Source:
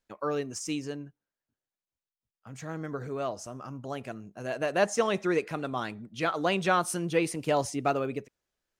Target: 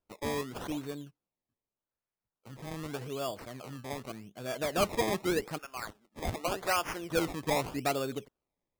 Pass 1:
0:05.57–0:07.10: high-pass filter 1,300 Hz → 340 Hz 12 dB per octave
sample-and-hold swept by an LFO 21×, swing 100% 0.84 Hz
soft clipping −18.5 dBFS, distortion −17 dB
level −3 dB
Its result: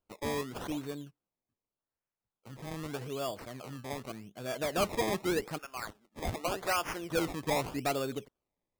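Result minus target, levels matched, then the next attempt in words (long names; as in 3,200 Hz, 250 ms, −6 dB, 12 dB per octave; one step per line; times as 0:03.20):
soft clipping: distortion +9 dB
0:05.57–0:07.10: high-pass filter 1,300 Hz → 340 Hz 12 dB per octave
sample-and-hold swept by an LFO 21×, swing 100% 0.84 Hz
soft clipping −12.5 dBFS, distortion −26 dB
level −3 dB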